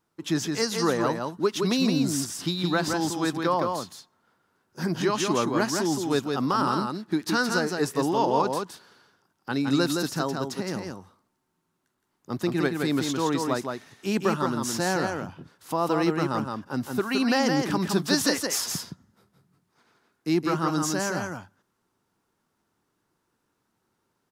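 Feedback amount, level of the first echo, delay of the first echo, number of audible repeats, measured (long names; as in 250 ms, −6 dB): repeats not evenly spaced, −4.5 dB, 167 ms, 1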